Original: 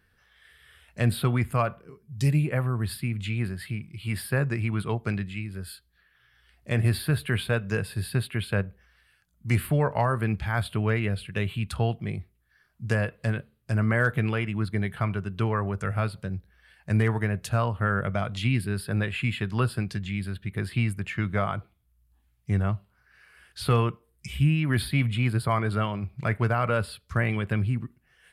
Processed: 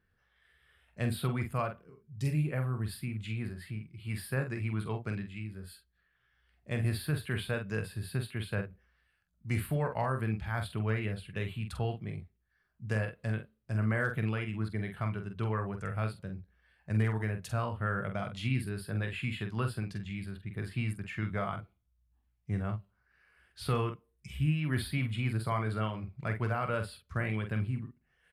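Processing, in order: doubler 46 ms -7 dB; mismatched tape noise reduction decoder only; gain -8 dB

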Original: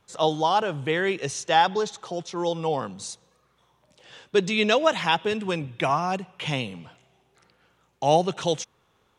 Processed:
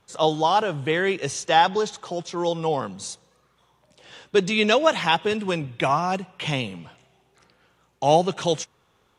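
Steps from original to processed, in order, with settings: gain +2 dB; AAC 64 kbps 32000 Hz

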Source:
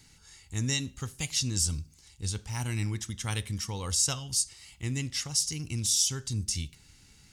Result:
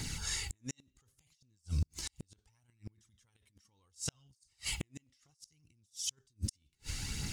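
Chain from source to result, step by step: negative-ratio compressor -40 dBFS, ratio -1; phaser 0.69 Hz, delay 4 ms, feedback 39%; flipped gate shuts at -31 dBFS, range -41 dB; gain +8 dB

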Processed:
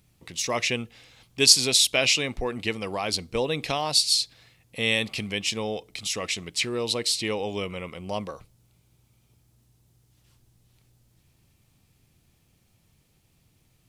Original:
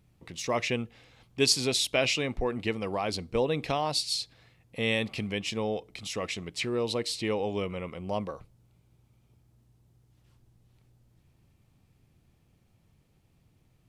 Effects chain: high shelf 2500 Hz +11 dB

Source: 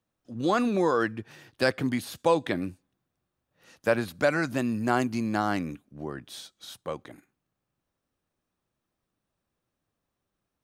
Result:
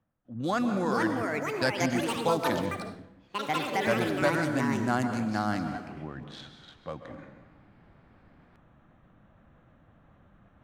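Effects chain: Wiener smoothing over 9 samples; low-pass opened by the level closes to 2900 Hz, open at -25.5 dBFS; fifteen-band EQ 400 Hz -10 dB, 1000 Hz -4 dB, 2500 Hz -6 dB; reverse; upward compressor, threshold -38 dBFS; reverse; plate-style reverb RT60 1.2 s, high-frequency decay 0.75×, pre-delay 0.12 s, DRR 7.5 dB; echoes that change speed 0.587 s, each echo +5 st, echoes 3

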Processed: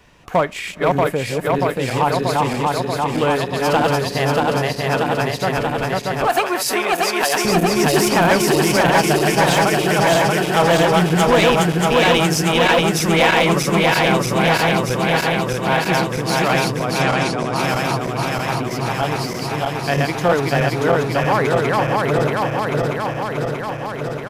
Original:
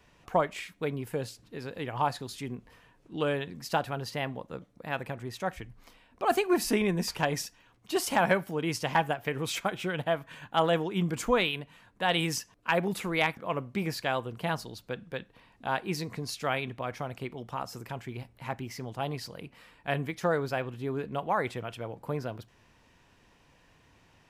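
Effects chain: regenerating reverse delay 0.317 s, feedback 85%, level -1.5 dB; 6.27–7.45 Bessel high-pass 690 Hz, order 2; in parallel at -6 dB: wavefolder -21.5 dBFS; 17.01–17.56 on the sum: LPF 10000 Hz 24 dB/oct; outdoor echo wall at 84 m, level -19 dB; gain +7 dB

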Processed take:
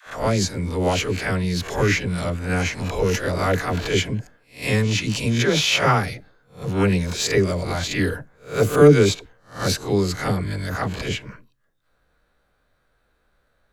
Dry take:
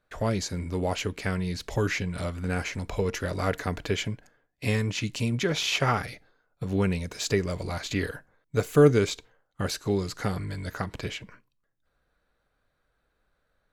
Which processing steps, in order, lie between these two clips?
spectral swells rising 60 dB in 0.33 s; dispersion lows, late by 66 ms, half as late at 460 Hz; gain +6 dB

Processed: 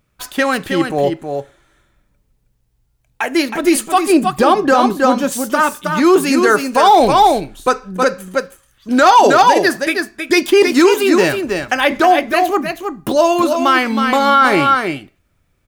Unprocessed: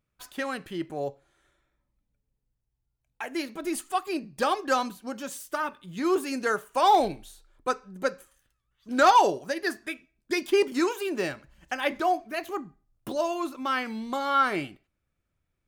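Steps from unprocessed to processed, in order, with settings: 4.1–5.32 tilt shelf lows +4.5 dB, about 1300 Hz; echo 0.318 s -6.5 dB; maximiser +17 dB; gain -1 dB

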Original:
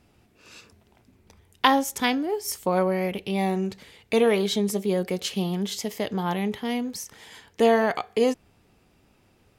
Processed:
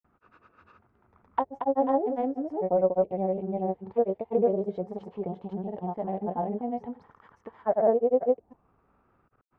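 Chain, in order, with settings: transient shaper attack -6 dB, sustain -2 dB; grains 0.1 s, grains 20/s, spray 0.343 s, pitch spread up and down by 0 st; envelope low-pass 620–1300 Hz down, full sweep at -23.5 dBFS; gain -5 dB

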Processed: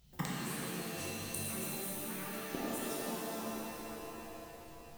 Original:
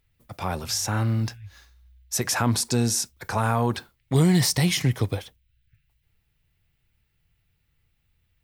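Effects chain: speed glide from 153% -> 186%; high shelf 6300 Hz +8 dB; resonator 73 Hz, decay 1.2 s, harmonics all, mix 40%; flipped gate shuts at -30 dBFS, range -30 dB; shimmer reverb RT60 3.3 s, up +7 st, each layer -2 dB, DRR -5.5 dB; gain +5.5 dB

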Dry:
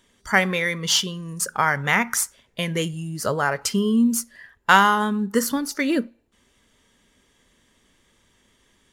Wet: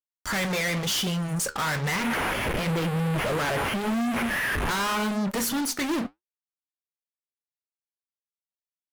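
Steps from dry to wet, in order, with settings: 1.95–4.71 delta modulation 16 kbps, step -25.5 dBFS; fuzz box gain 38 dB, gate -40 dBFS; flange 0.95 Hz, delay 4.9 ms, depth 9.7 ms, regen -69%; gain -7.5 dB

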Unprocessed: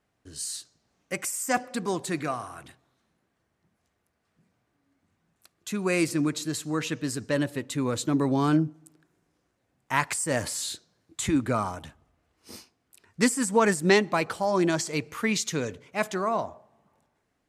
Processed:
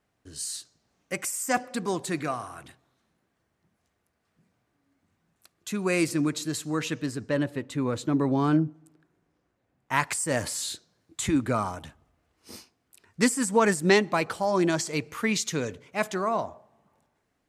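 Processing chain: 7.06–9.92 high shelf 4100 Hz -10.5 dB

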